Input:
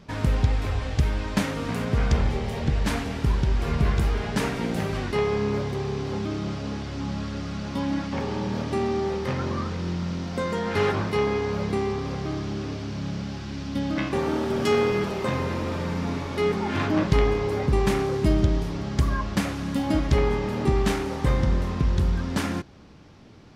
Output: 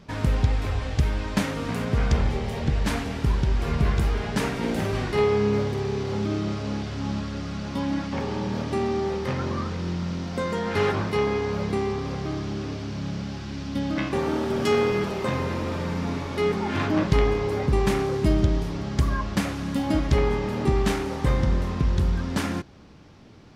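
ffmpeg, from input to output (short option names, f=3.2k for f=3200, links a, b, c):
-filter_complex "[0:a]asettb=1/sr,asplit=3[a][b][c];[a]atrim=end=4.584[d];[b]atrim=start=4.58:end=7.2,asetpts=PTS-STARTPTS,afade=t=in:d=0.004:c=qsin,afade=t=out:st=2.616:d=0.004:c=qsin,asplit=2[e][f];[f]adelay=48,volume=-5dB[g];[e][g]amix=inputs=2:normalize=0,atrim=end_sample=115542[h];[c]atrim=start=7.196[i];[d][h]acrossfade=d=0.004:c1=hsin:c2=qsin[j];[j][i]acrossfade=d=0.004:c1=qsin:c2=hsin"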